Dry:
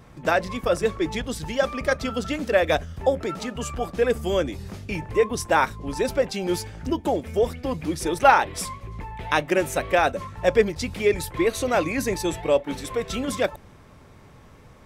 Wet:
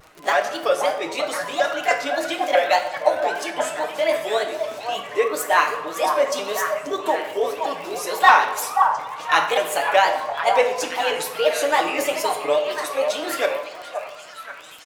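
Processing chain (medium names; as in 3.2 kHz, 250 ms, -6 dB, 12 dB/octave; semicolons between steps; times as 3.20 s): sawtooth pitch modulation +5 st, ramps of 319 ms; high-pass 520 Hz 12 dB/octave; comb 6.7 ms, depth 56%; repeats whose band climbs or falls 526 ms, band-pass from 850 Hz, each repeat 0.7 oct, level -4 dB; in parallel at -8.5 dB: saturation -14 dBFS, distortion -13 dB; on the sum: wow and flutter 110 cents; on a send at -5.5 dB: reverberation RT60 1.0 s, pre-delay 14 ms; on the sum: crackle 40 per s -31 dBFS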